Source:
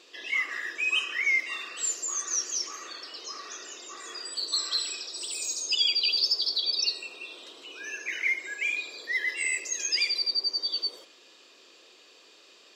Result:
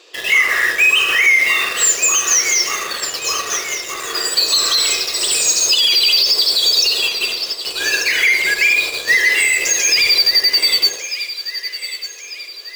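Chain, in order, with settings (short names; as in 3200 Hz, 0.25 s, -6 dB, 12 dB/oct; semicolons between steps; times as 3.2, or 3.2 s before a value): resonant low shelf 300 Hz -10.5 dB, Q 1.5; in parallel at -8.5 dB: companded quantiser 2-bit; on the sum: thin delay 1.192 s, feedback 56%, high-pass 1600 Hz, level -11 dB; on a send at -5.5 dB: reverb RT60 0.80 s, pre-delay 48 ms; on the sum: maximiser +19 dB; upward expander 1.5:1, over -20 dBFS; gain -4 dB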